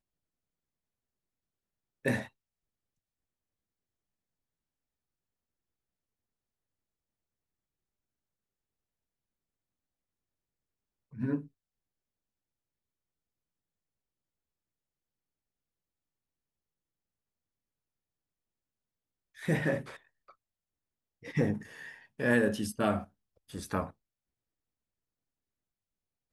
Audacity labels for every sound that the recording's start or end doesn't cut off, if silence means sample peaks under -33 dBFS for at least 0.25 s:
2.050000	2.220000	sound
11.200000	11.390000	sound
19.450000	19.810000	sound
21.360000	21.570000	sound
22.200000	23.000000	sound
23.550000	23.840000	sound